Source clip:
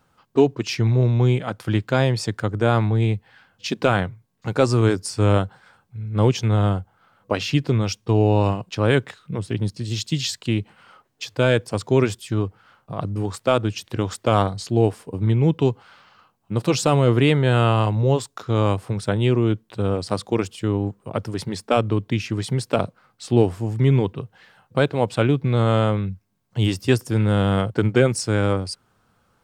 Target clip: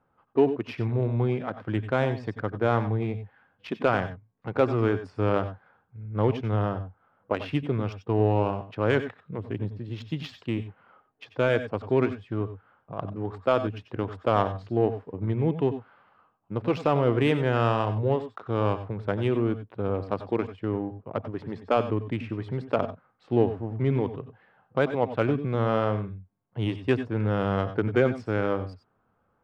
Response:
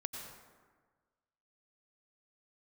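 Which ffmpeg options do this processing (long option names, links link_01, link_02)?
-filter_complex "[0:a]adynamicsmooth=sensitivity=1:basefreq=1700,bass=frequency=250:gain=-6,treble=frequency=4000:gain=-11[link_01];[1:a]atrim=start_sample=2205,atrim=end_sample=4410[link_02];[link_01][link_02]afir=irnorm=-1:irlink=0,volume=-1dB"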